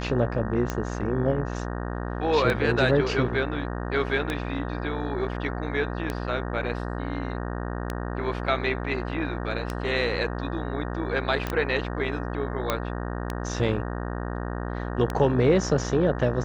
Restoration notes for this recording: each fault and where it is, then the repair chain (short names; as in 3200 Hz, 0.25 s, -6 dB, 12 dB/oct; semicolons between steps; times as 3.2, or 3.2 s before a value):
buzz 60 Hz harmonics 31 -31 dBFS
tick 33 1/3 rpm -13 dBFS
11.47 pop -14 dBFS
12.7 pop -9 dBFS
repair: de-click; de-hum 60 Hz, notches 31